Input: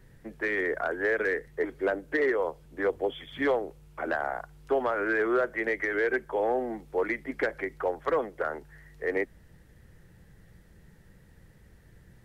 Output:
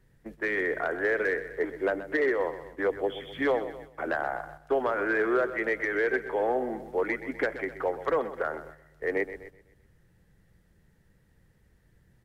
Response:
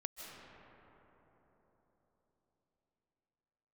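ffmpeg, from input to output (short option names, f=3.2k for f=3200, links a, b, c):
-af "aecho=1:1:127|254|381|508|635:0.224|0.116|0.0605|0.0315|0.0164,agate=range=-8dB:threshold=-44dB:ratio=16:detection=peak"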